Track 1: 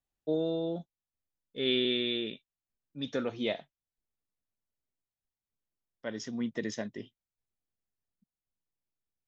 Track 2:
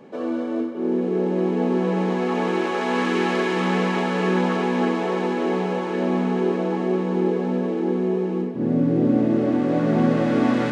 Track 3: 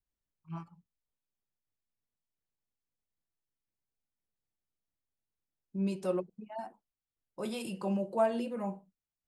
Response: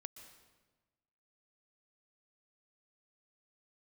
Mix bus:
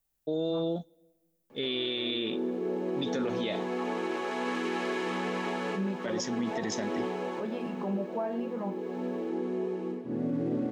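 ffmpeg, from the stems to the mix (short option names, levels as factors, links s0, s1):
-filter_complex "[0:a]highshelf=f=9000:g=11.5,volume=1.41,asplit=2[s0][s1];[s1]volume=0.141[s2];[1:a]equalizer=f=180:t=o:w=0.36:g=-6,adelay=1500,volume=0.299,asplit=2[s3][s4];[s4]volume=0.316[s5];[2:a]alimiter=level_in=1.41:limit=0.0631:level=0:latency=1,volume=0.708,lowpass=1800,volume=1.19,asplit=2[s6][s7];[s7]apad=whole_len=538862[s8];[s3][s8]sidechaincompress=threshold=0.00891:ratio=8:attack=26:release=428[s9];[3:a]atrim=start_sample=2205[s10];[s2][s5]amix=inputs=2:normalize=0[s11];[s11][s10]afir=irnorm=-1:irlink=0[s12];[s0][s9][s6][s12]amix=inputs=4:normalize=0,highshelf=f=7400:g=4.5,alimiter=limit=0.075:level=0:latency=1:release=35"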